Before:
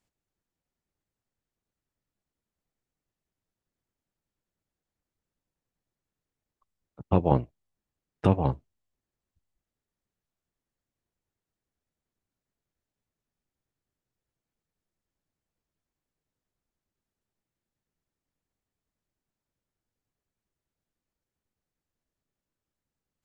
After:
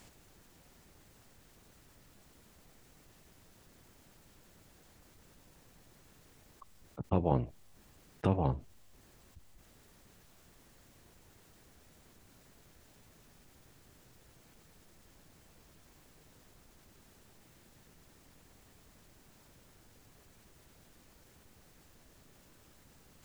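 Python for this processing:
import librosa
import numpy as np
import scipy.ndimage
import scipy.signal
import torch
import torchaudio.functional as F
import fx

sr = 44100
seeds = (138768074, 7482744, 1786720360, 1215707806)

y = fx.env_flatten(x, sr, amount_pct=50)
y = y * 10.0 ** (-8.0 / 20.0)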